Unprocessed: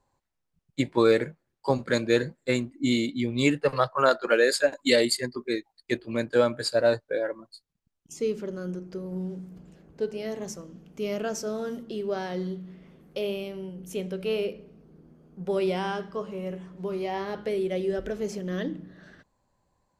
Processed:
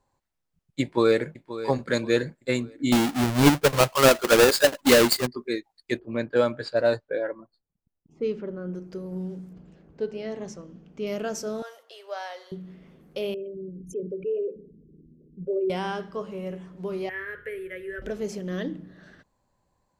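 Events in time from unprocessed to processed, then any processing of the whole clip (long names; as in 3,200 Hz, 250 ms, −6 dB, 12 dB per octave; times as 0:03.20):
0:00.82–0:01.28: delay throw 530 ms, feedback 40%, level −13.5 dB
0:02.92–0:05.27: each half-wave held at its own peak
0:05.99–0:08.75: low-pass that shuts in the quiet parts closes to 820 Hz, open at −17.5 dBFS
0:09.53–0:11.07: high-frequency loss of the air 97 metres
0:11.62–0:12.52: Butterworth high-pass 570 Hz
0:13.34–0:15.70: spectral envelope exaggerated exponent 3
0:17.09–0:18.02: drawn EQ curve 130 Hz 0 dB, 200 Hz −25 dB, 460 Hz −4 dB, 790 Hz −26 dB, 1,700 Hz +11 dB, 4,900 Hz −26 dB, 12,000 Hz +3 dB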